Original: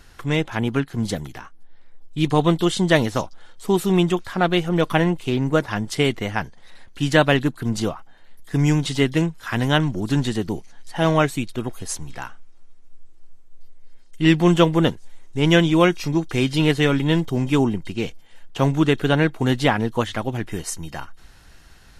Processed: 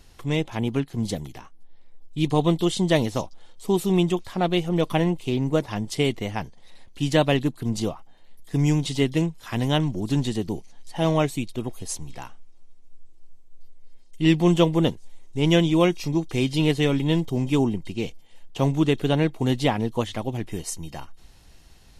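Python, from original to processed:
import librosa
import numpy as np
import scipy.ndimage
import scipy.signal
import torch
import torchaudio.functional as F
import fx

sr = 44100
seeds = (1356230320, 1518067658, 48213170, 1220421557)

y = fx.peak_eq(x, sr, hz=1500.0, db=-10.5, octaves=0.7)
y = F.gain(torch.from_numpy(y), -2.5).numpy()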